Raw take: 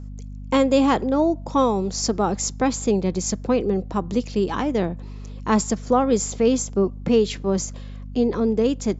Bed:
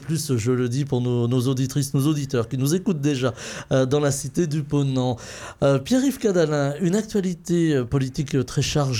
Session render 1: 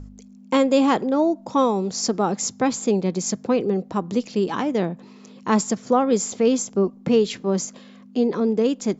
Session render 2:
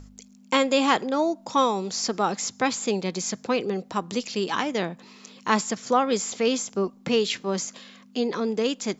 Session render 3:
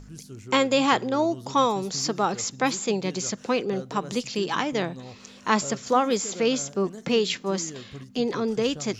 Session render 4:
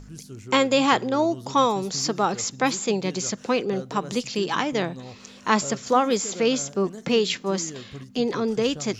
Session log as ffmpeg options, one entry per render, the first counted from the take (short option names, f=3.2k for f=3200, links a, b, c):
-af "bandreject=f=50:t=h:w=4,bandreject=f=100:t=h:w=4,bandreject=f=150:t=h:w=4"
-filter_complex "[0:a]tiltshelf=f=970:g=-7.5,acrossover=split=3800[a][b];[b]acompressor=threshold=-31dB:ratio=4:attack=1:release=60[c];[a][c]amix=inputs=2:normalize=0"
-filter_complex "[1:a]volume=-19.5dB[a];[0:a][a]amix=inputs=2:normalize=0"
-af "volume=1.5dB"